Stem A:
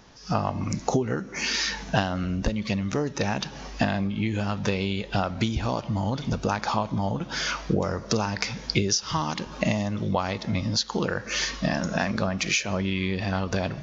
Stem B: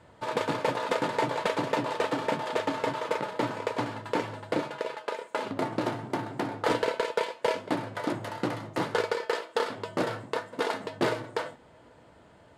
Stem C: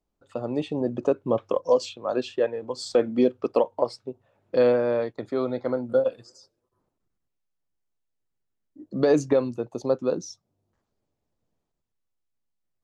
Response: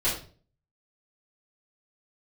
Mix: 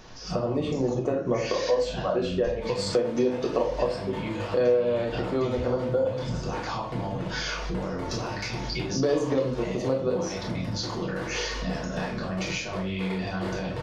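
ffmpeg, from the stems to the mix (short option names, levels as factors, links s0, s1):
-filter_complex "[0:a]acompressor=threshold=0.0282:ratio=4,volume=1.06,asplit=2[s0][s1];[s1]volume=0.355[s2];[1:a]adelay=2400,volume=0.422,asplit=2[s3][s4];[s4]volume=0.266[s5];[2:a]volume=1.06,asplit=2[s6][s7];[s7]volume=0.447[s8];[s0][s3]amix=inputs=2:normalize=0,alimiter=level_in=2.37:limit=0.0631:level=0:latency=1,volume=0.422,volume=1[s9];[3:a]atrim=start_sample=2205[s10];[s2][s5][s8]amix=inputs=3:normalize=0[s11];[s11][s10]afir=irnorm=-1:irlink=0[s12];[s6][s9][s12]amix=inputs=3:normalize=0,acompressor=threshold=0.0501:ratio=2.5"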